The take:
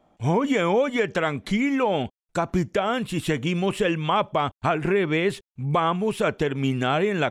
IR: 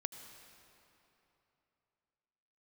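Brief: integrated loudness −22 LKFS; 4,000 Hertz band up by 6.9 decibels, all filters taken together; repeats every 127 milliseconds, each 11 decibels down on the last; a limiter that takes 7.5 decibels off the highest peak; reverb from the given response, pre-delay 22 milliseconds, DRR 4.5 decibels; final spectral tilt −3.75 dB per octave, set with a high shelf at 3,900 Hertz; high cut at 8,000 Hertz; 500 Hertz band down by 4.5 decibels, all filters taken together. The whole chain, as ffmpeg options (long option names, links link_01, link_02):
-filter_complex "[0:a]lowpass=8000,equalizer=frequency=500:width_type=o:gain=-6,highshelf=frequency=3900:gain=7.5,equalizer=frequency=4000:width_type=o:gain=5.5,alimiter=limit=-14.5dB:level=0:latency=1,aecho=1:1:127|254|381:0.282|0.0789|0.0221,asplit=2[link_01][link_02];[1:a]atrim=start_sample=2205,adelay=22[link_03];[link_02][link_03]afir=irnorm=-1:irlink=0,volume=-3.5dB[link_04];[link_01][link_04]amix=inputs=2:normalize=0,volume=2.5dB"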